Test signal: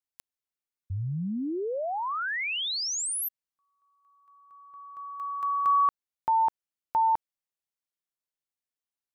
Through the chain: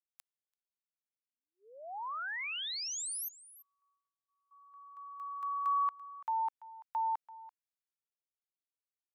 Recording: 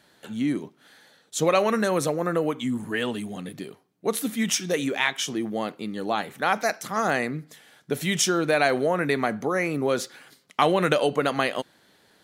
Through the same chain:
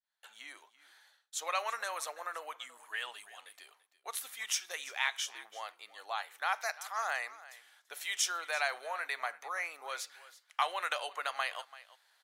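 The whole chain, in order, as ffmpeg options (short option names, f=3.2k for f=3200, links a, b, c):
-filter_complex "[0:a]highpass=f=800:w=0.5412,highpass=f=800:w=1.3066,asplit=2[a][b];[b]aecho=0:1:337:0.126[c];[a][c]amix=inputs=2:normalize=0,agate=range=-33dB:threshold=-51dB:ratio=3:release=472:detection=rms,volume=-8dB"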